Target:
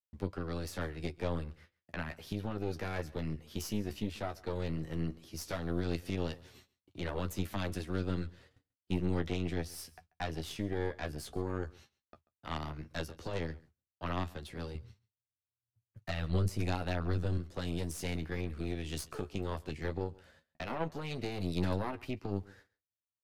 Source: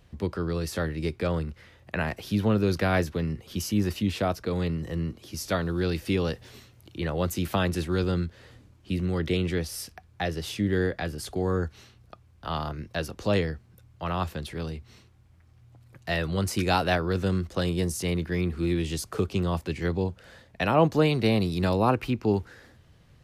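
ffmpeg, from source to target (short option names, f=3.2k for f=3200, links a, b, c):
-filter_complex "[0:a]agate=range=-47dB:threshold=-48dB:ratio=16:detection=peak,asettb=1/sr,asplit=3[a][b][c];[a]atrim=end=14.754[d];[b]atrim=start=14.75:end=17.38,asetpts=PTS-STARTPTS,afade=t=in:d=0.004:c=qsin,afade=t=out:st=2.626:d=0.004:c=qsin,equalizer=f=110:t=o:w=0.76:g=13[e];[c]atrim=start=17.376[f];[d][e]acrossfade=d=0.004:c1=hsin:c2=qsin[g];[g][f]acrossfade=d=0.004:c1=qsin:c2=hsin,alimiter=limit=-19.5dB:level=0:latency=1:release=295,flanger=delay=9.7:depth=4.3:regen=28:speed=0.13:shape=triangular,aeval=exprs='0.106*(cos(1*acos(clip(val(0)/0.106,-1,1)))-cos(1*PI/2))+0.00944*(cos(3*acos(clip(val(0)/0.106,-1,1)))-cos(3*PI/2))+0.0188*(cos(4*acos(clip(val(0)/0.106,-1,1)))-cos(4*PI/2))':c=same,aecho=1:1:138:0.0708,volume=-2.5dB"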